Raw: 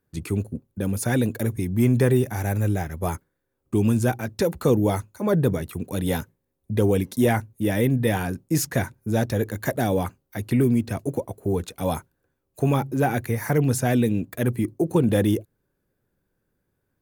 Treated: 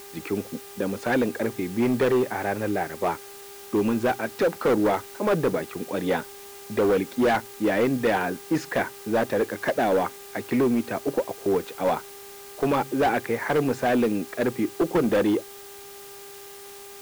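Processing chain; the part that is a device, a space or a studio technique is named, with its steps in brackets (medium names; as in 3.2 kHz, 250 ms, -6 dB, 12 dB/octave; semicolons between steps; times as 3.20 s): aircraft radio (band-pass 330–2400 Hz; hard clipper -22 dBFS, distortion -11 dB; mains buzz 400 Hz, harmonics 29, -51 dBFS -8 dB/octave; white noise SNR 20 dB); trim +5 dB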